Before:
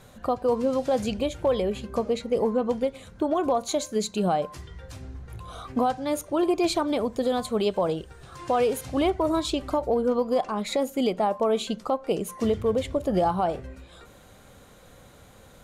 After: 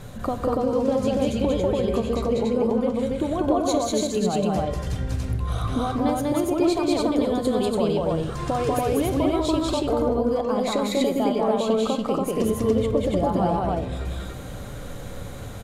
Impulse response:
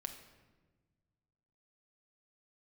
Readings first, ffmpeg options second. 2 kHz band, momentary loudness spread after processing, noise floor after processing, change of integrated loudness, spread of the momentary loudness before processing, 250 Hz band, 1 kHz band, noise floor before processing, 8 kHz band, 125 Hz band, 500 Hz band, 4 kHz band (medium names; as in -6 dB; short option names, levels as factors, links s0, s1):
+2.0 dB, 8 LU, -35 dBFS, +2.5 dB, 11 LU, +5.0 dB, +1.0 dB, -51 dBFS, +2.5 dB, +9.0 dB, +2.0 dB, +2.0 dB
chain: -filter_complex "[0:a]lowshelf=f=290:g=8,acompressor=threshold=0.0224:ratio=3,aecho=1:1:192.4|285.7:0.891|0.891,asplit=2[s0][s1];[1:a]atrim=start_sample=2205,asetrate=36162,aresample=44100[s2];[s1][s2]afir=irnorm=-1:irlink=0,volume=1.41[s3];[s0][s3]amix=inputs=2:normalize=0"